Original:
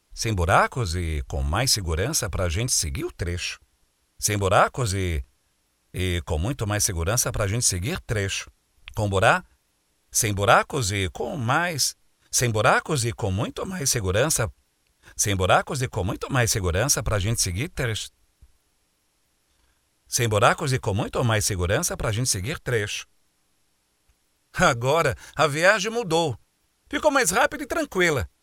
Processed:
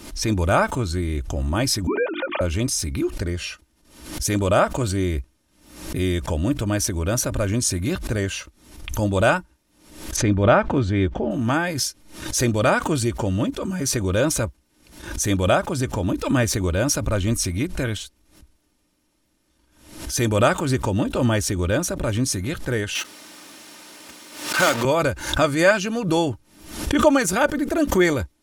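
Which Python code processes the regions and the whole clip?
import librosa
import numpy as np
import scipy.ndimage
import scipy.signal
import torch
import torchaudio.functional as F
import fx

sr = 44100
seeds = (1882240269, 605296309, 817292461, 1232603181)

y = fx.chain(x, sr, fx.sine_speech(),
    fx.hum_notches(base_hz=50, count=7), at=(1.87, 2.41))
y = fx.chain(y, sr, fx.lowpass(hz=2600.0, slope=12),
    fx.low_shelf(hz=410.0, db=4.0), at=(10.16, 11.31))
y = fx.chain(y, sr, fx.block_float(bits=3),
    fx.weighting(curve='A'),
    fx.env_flatten(amount_pct=50), at=(22.95, 24.85))
y = fx.peak_eq(y, sr, hz=210.0, db=11.0, octaves=2.0)
y = y + 0.46 * np.pad(y, (int(3.3 * sr / 1000.0), 0))[:len(y)]
y = fx.pre_swell(y, sr, db_per_s=86.0)
y = y * 10.0 ** (-3.0 / 20.0)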